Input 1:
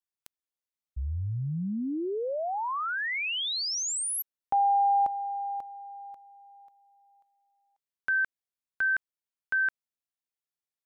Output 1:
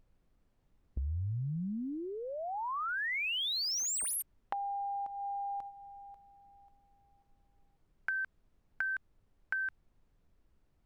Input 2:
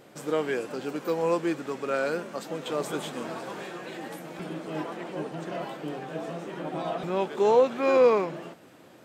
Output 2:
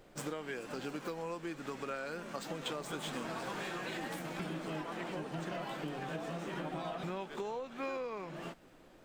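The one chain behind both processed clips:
running median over 3 samples
noise gate −41 dBFS, range −11 dB
downward compressor 12 to 1, threshold −36 dBFS
background noise brown −72 dBFS
dynamic equaliser 450 Hz, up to −6 dB, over −52 dBFS, Q 0.79
level +3.5 dB

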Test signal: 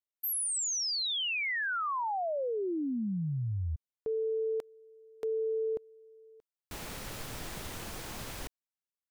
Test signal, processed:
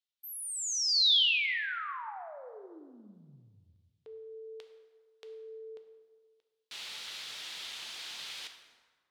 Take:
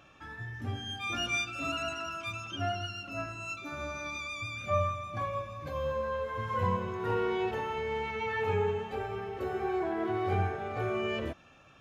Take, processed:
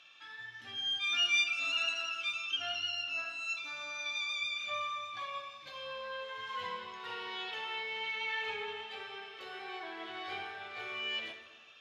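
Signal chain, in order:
resonant band-pass 3,600 Hz, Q 2.2
dense smooth reverb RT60 1.6 s, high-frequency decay 0.6×, DRR 5 dB
level +8.5 dB

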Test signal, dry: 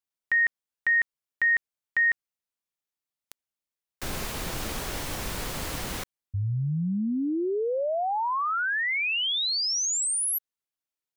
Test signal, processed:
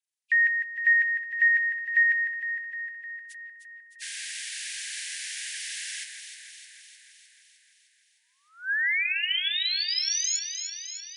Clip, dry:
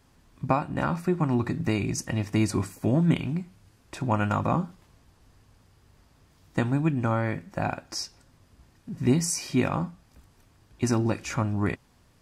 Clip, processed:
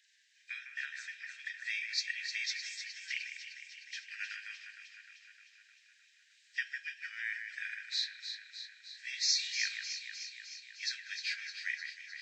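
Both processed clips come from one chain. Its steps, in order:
hearing-aid frequency compression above 2,400 Hz 1.5 to 1
Chebyshev high-pass filter 1,600 Hz, order 8
delay that swaps between a low-pass and a high-pass 153 ms, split 2,400 Hz, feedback 80%, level −6 dB
level +1.5 dB

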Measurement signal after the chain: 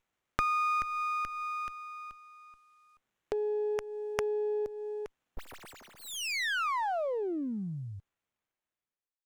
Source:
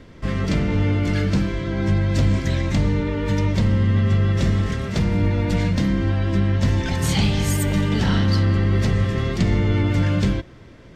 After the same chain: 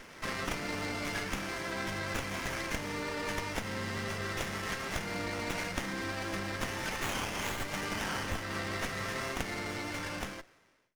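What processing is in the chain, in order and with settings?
fade-out on the ending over 1.85 s
meter weighting curve ITU-R 468
downward compressor 3 to 1, threshold −33 dBFS
windowed peak hold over 9 samples

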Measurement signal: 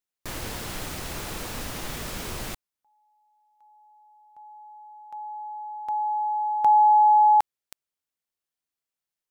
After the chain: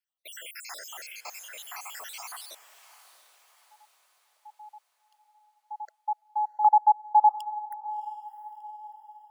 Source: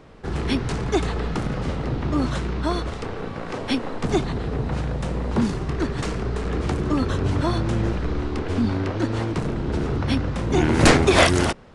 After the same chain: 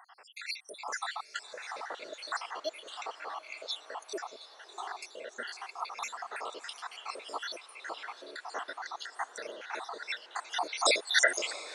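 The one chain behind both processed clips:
time-frequency cells dropped at random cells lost 78%
high-pass filter 660 Hz 24 dB per octave
on a send: feedback delay with all-pass diffusion 690 ms, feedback 45%, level −14.5 dB
on the sum: level +1.5 dB

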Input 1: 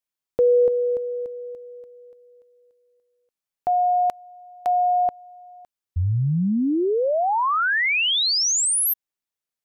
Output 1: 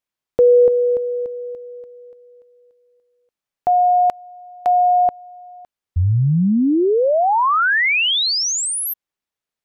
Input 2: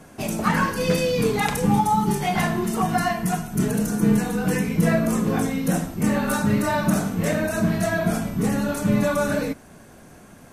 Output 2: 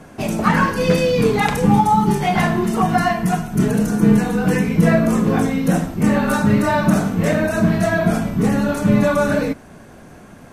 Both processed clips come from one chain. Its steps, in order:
high-shelf EQ 5,500 Hz −9 dB
level +5.5 dB

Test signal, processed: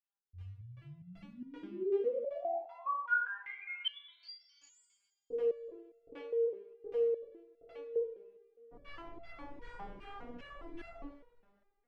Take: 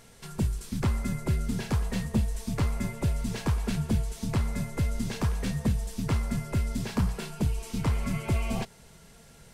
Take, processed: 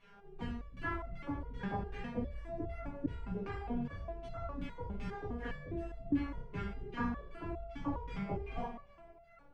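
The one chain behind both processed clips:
auto-filter low-pass saw down 2.6 Hz 220–2,600 Hz
coupled-rooms reverb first 0.49 s, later 2 s, from −18 dB, DRR −9.5 dB
step-sequenced resonator 4.9 Hz 200–680 Hz
level −1 dB

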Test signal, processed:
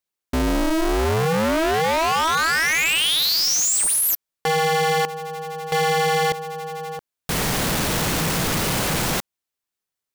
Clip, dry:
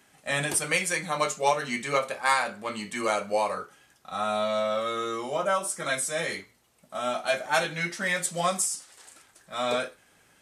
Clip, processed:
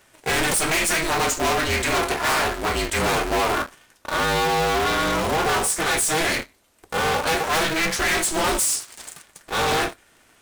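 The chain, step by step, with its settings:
leveller curve on the samples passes 2
soft clipping −27 dBFS
ring modulator with a square carrier 160 Hz
level +8 dB

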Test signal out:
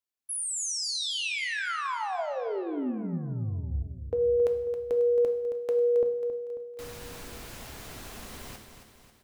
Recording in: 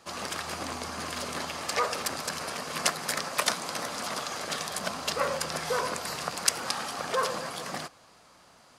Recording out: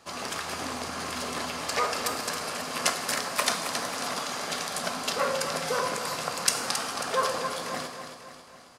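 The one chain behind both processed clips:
repeating echo 271 ms, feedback 52%, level −9 dB
reverb whose tail is shaped and stops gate 270 ms falling, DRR 5.5 dB

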